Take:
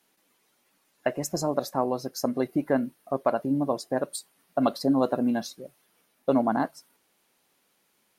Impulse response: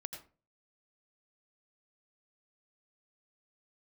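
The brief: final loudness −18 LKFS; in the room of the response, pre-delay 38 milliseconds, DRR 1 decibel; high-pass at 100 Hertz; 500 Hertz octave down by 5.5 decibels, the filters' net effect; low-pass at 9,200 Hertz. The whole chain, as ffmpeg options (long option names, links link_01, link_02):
-filter_complex "[0:a]highpass=100,lowpass=9200,equalizer=frequency=500:width_type=o:gain=-7,asplit=2[link_01][link_02];[1:a]atrim=start_sample=2205,adelay=38[link_03];[link_02][link_03]afir=irnorm=-1:irlink=0,volume=1dB[link_04];[link_01][link_04]amix=inputs=2:normalize=0,volume=10dB"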